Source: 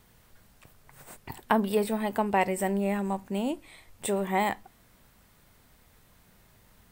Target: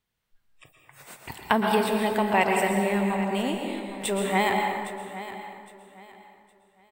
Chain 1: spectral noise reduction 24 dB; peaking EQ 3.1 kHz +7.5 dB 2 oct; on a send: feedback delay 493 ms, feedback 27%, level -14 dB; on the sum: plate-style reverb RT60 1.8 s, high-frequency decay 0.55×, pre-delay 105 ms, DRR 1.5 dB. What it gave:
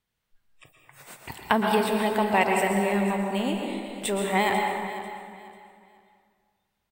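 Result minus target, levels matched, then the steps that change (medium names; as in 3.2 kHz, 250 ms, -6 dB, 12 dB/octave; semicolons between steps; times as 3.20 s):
echo 319 ms early
change: feedback delay 812 ms, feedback 27%, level -14 dB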